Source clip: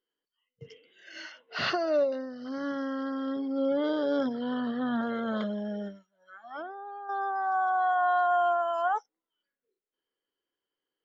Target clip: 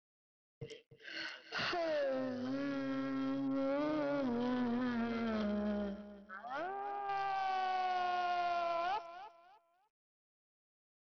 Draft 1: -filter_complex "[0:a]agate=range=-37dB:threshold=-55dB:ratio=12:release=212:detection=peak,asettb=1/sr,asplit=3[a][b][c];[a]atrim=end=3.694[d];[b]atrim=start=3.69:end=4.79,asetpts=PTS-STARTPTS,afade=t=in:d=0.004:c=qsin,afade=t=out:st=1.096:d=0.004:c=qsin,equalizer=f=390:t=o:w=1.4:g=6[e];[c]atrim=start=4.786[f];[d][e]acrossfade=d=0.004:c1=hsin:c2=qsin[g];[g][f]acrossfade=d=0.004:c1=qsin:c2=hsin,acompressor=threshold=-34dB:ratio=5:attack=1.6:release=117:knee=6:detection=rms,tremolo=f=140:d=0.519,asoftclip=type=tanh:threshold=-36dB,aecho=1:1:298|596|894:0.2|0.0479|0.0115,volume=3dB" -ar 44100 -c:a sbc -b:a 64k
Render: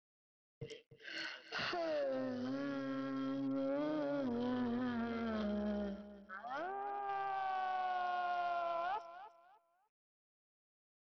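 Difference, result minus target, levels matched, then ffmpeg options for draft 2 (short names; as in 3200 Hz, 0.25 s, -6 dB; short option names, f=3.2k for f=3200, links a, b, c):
compressor: peak gain reduction +5 dB
-filter_complex "[0:a]agate=range=-37dB:threshold=-55dB:ratio=12:release=212:detection=peak,asettb=1/sr,asplit=3[a][b][c];[a]atrim=end=3.694[d];[b]atrim=start=3.69:end=4.79,asetpts=PTS-STARTPTS,afade=t=in:d=0.004:c=qsin,afade=t=out:st=1.096:d=0.004:c=qsin,equalizer=f=390:t=o:w=1.4:g=6[e];[c]atrim=start=4.786[f];[d][e]acrossfade=d=0.004:c1=hsin:c2=qsin[g];[g][f]acrossfade=d=0.004:c1=qsin:c2=hsin,acompressor=threshold=-27.5dB:ratio=5:attack=1.6:release=117:knee=6:detection=rms,tremolo=f=140:d=0.519,asoftclip=type=tanh:threshold=-36dB,aecho=1:1:298|596|894:0.2|0.0479|0.0115,volume=3dB" -ar 44100 -c:a sbc -b:a 64k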